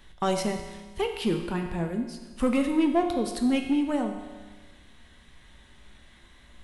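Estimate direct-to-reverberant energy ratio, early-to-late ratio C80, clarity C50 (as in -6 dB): 4.0 dB, 8.0 dB, 6.5 dB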